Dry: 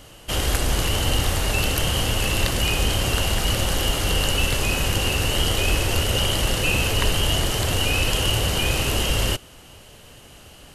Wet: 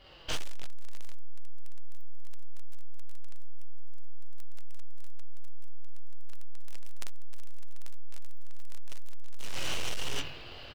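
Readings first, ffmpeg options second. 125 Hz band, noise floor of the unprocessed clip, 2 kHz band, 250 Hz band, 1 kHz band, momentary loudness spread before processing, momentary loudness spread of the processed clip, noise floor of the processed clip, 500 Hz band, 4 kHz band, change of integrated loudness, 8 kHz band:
−23.0 dB, −46 dBFS, −22.0 dB, −26.0 dB, −22.5 dB, 2 LU, 23 LU, −45 dBFS, −24.5 dB, −22.0 dB, −18.5 dB, −22.5 dB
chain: -filter_complex "[0:a]aresample=11025,aresample=44100,asplit=2[link_01][link_02];[link_02]asplit=7[link_03][link_04][link_05][link_06][link_07][link_08][link_09];[link_03]adelay=80,afreqshift=-100,volume=-14dB[link_10];[link_04]adelay=160,afreqshift=-200,volume=-17.9dB[link_11];[link_05]adelay=240,afreqshift=-300,volume=-21.8dB[link_12];[link_06]adelay=320,afreqshift=-400,volume=-25.6dB[link_13];[link_07]adelay=400,afreqshift=-500,volume=-29.5dB[link_14];[link_08]adelay=480,afreqshift=-600,volume=-33.4dB[link_15];[link_09]adelay=560,afreqshift=-700,volume=-37.3dB[link_16];[link_10][link_11][link_12][link_13][link_14][link_15][link_16]amix=inputs=7:normalize=0[link_17];[link_01][link_17]amix=inputs=2:normalize=0,aeval=exprs='0.531*(cos(1*acos(clip(val(0)/0.531,-1,1)))-cos(1*PI/2))+0.015*(cos(2*acos(clip(val(0)/0.531,-1,1)))-cos(2*PI/2))+0.237*(cos(3*acos(clip(val(0)/0.531,-1,1)))-cos(3*PI/2))+0.0944*(cos(6*acos(clip(val(0)/0.531,-1,1)))-cos(6*PI/2))':channel_layout=same,highshelf=frequency=2500:gain=2.5,flanger=delay=5.1:depth=4.4:regen=39:speed=0.51:shape=triangular,asplit=2[link_18][link_19];[link_19]aecho=0:1:45|59|105|187|795|841:0.708|0.668|0.251|0.282|0.316|0.473[link_20];[link_18][link_20]amix=inputs=2:normalize=0,acrusher=bits=8:mode=log:mix=0:aa=0.000001,dynaudnorm=framelen=150:gausssize=11:maxgain=5.5dB,equalizer=frequency=190:width=1.8:gain=-10,asplit=2[link_21][link_22];[link_22]adelay=22,volume=-7dB[link_23];[link_21][link_23]amix=inputs=2:normalize=0,acompressor=threshold=-19dB:ratio=4,aeval=exprs='clip(val(0),-1,0.0531)':channel_layout=same,volume=2.5dB"

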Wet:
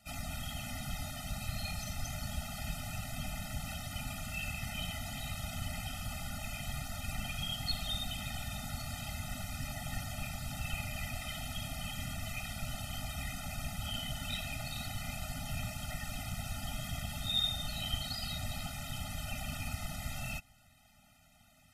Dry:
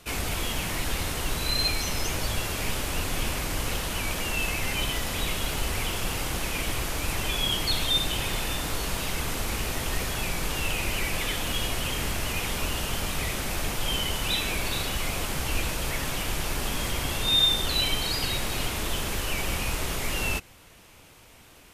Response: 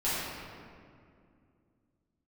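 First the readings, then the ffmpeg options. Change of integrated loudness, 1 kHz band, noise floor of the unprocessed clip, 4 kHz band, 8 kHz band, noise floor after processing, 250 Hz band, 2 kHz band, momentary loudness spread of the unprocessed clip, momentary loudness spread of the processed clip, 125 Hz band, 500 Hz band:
−11.5 dB, −11.5 dB, −52 dBFS, −12.0 dB, −12.5 dB, −63 dBFS, −9.5 dB, −12.5 dB, 5 LU, 4 LU, −6.5 dB, −15.0 dB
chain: -af "afftfilt=real='hypot(re,im)*cos(2*PI*random(0))':imag='hypot(re,im)*sin(2*PI*random(1))':win_size=512:overlap=0.75,afftfilt=real='re*eq(mod(floor(b*sr/1024/300),2),0)':imag='im*eq(mod(floor(b*sr/1024/300),2),0)':win_size=1024:overlap=0.75,volume=-3dB"

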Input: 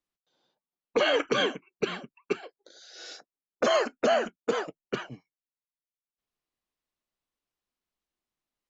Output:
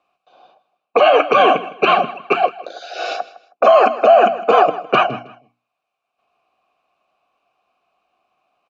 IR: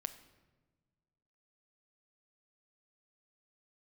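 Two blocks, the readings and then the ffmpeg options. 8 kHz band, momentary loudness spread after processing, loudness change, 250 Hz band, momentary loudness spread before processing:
can't be measured, 16 LU, +14.0 dB, +8.5 dB, 18 LU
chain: -filter_complex "[0:a]areverse,acompressor=threshold=-32dB:ratio=6,areverse,asplit=3[link_01][link_02][link_03];[link_01]bandpass=frequency=730:width_type=q:width=8,volume=0dB[link_04];[link_02]bandpass=frequency=1090:width_type=q:width=8,volume=-6dB[link_05];[link_03]bandpass=frequency=2440:width_type=q:width=8,volume=-9dB[link_06];[link_04][link_05][link_06]amix=inputs=3:normalize=0,lowshelf=frequency=420:gain=-5,bandreject=frequency=60:width_type=h:width=6,bandreject=frequency=120:width_type=h:width=6,bandreject=frequency=180:width_type=h:width=6,bandreject=frequency=240:width_type=h:width=6,bandreject=frequency=300:width_type=h:width=6,acontrast=65,bass=frequency=250:gain=10,treble=frequency=4000:gain=-6,bandreject=frequency=3300:width=14,aecho=1:1:159|318:0.126|0.034,alimiter=level_in=32dB:limit=-1dB:release=50:level=0:latency=1,volume=-1dB"

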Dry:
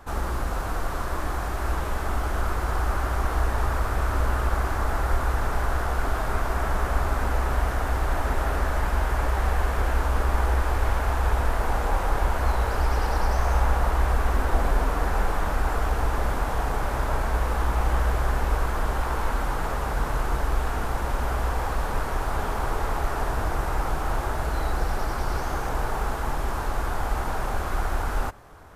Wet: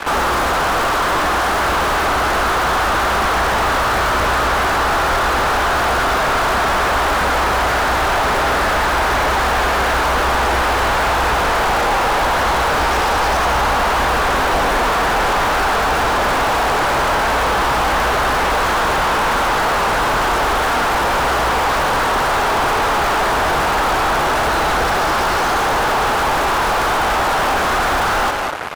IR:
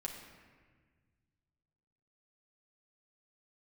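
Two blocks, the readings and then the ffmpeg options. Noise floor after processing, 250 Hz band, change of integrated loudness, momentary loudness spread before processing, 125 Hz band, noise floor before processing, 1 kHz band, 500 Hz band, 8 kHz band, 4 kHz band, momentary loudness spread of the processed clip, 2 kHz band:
−17 dBFS, +9.5 dB, +11.5 dB, 4 LU, −0.5 dB, −29 dBFS, +14.5 dB, +12.5 dB, +14.0 dB, +19.5 dB, 0 LU, +15.5 dB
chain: -filter_complex "[0:a]aecho=1:1:205:0.188,acrusher=bits=6:mix=0:aa=0.5,asplit=2[link_01][link_02];[link_02]highpass=frequency=720:poles=1,volume=37dB,asoftclip=type=tanh:threshold=-9dB[link_03];[link_01][link_03]amix=inputs=2:normalize=0,lowpass=frequency=3100:poles=1,volume=-6dB"

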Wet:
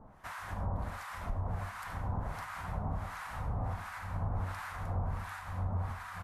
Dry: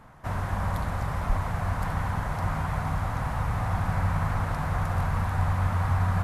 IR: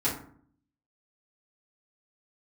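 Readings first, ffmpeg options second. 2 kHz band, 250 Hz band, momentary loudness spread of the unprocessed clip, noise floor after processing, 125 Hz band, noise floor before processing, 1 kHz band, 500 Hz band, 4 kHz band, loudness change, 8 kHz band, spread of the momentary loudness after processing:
−8.5 dB, −11.0 dB, 4 LU, −46 dBFS, −11.0 dB, −33 dBFS, −10.0 dB, −9.5 dB, −8.0 dB, −10.0 dB, −8.0 dB, 5 LU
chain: -filter_complex "[0:a]equalizer=frequency=140:width=2.7:gain=-6,acompressor=threshold=-28dB:ratio=6,acrossover=split=970[link_01][link_02];[link_01]aeval=exprs='val(0)*(1-1/2+1/2*cos(2*PI*1.4*n/s))':channel_layout=same[link_03];[link_02]aeval=exprs='val(0)*(1-1/2-1/2*cos(2*PI*1.4*n/s))':channel_layout=same[link_04];[link_03][link_04]amix=inputs=2:normalize=0,flanger=delay=4.4:depth=6.6:regen=86:speed=0.34:shape=triangular,asplit=2[link_05][link_06];[link_06]aecho=0:1:878:0.106[link_07];[link_05][link_07]amix=inputs=2:normalize=0,volume=4dB"

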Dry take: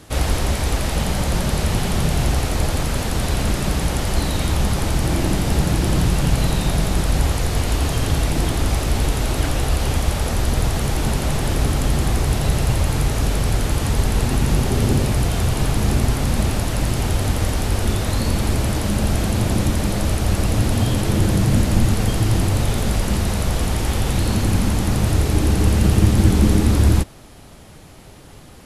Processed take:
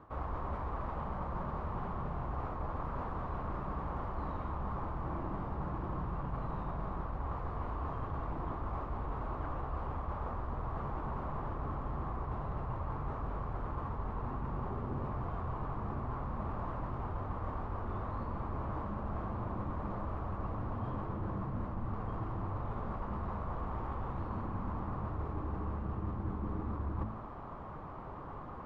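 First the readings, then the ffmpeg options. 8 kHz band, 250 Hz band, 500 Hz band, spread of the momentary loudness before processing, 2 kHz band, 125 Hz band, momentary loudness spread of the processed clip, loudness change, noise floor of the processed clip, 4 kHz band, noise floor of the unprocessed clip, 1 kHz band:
below −40 dB, −20.0 dB, −17.5 dB, 4 LU, −23.0 dB, −20.5 dB, 1 LU, −19.5 dB, −44 dBFS, below −35 dB, −41 dBFS, −10.5 dB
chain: -af "lowpass=frequency=1100:width_type=q:width=4.9,bandreject=frequency=53.87:width_type=h:width=4,bandreject=frequency=107.74:width_type=h:width=4,bandreject=frequency=161.61:width_type=h:width=4,bandreject=frequency=215.48:width_type=h:width=4,bandreject=frequency=269.35:width_type=h:width=4,areverse,acompressor=threshold=-32dB:ratio=6,areverse,volume=-4dB"

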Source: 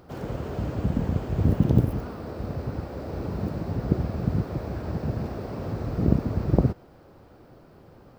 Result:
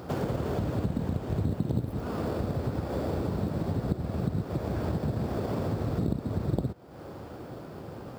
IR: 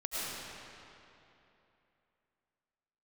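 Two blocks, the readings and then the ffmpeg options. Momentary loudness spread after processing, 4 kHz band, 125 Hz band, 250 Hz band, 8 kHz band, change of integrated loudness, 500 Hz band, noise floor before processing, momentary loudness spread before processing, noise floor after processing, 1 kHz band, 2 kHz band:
12 LU, +1.5 dB, −4.5 dB, −3.5 dB, can't be measured, −3.5 dB, −0.5 dB, −52 dBFS, 11 LU, −43 dBFS, 0.0 dB, −0.5 dB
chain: -filter_complex "[0:a]highpass=70,asplit=2[link_01][link_02];[link_02]acrusher=samples=11:mix=1:aa=0.000001,volume=-9.5dB[link_03];[link_01][link_03]amix=inputs=2:normalize=0,acompressor=threshold=-35dB:ratio=5,volume=7.5dB"

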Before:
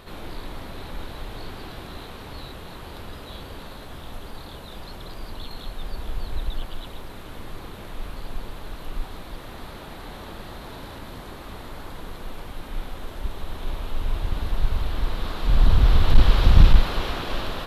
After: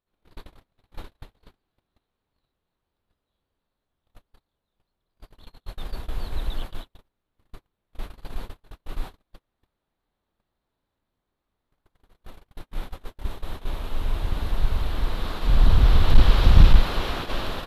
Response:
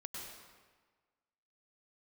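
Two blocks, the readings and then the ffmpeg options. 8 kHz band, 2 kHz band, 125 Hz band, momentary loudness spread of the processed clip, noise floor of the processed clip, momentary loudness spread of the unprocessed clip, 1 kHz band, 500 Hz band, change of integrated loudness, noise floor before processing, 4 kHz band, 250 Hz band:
can't be measured, −1.0 dB, 0.0 dB, 23 LU, −82 dBFS, 20 LU, −1.5 dB, −1.5 dB, +3.5 dB, −40 dBFS, −1.0 dB, −1.0 dB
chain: -af "agate=range=-43dB:threshold=-29dB:ratio=16:detection=peak"

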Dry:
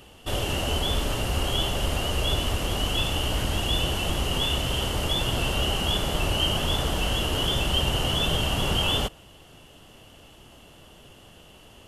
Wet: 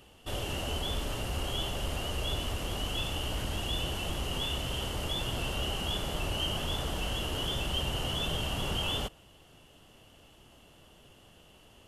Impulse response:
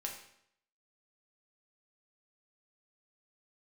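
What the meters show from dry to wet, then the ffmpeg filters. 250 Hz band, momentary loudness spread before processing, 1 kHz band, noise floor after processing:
−8.0 dB, 3 LU, −8.0 dB, −58 dBFS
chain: -af "aeval=exprs='0.299*(cos(1*acos(clip(val(0)/0.299,-1,1)))-cos(1*PI/2))+0.0133*(cos(5*acos(clip(val(0)/0.299,-1,1)))-cos(5*PI/2))+0.00188*(cos(6*acos(clip(val(0)/0.299,-1,1)))-cos(6*PI/2))':channel_layout=same,volume=-9dB"

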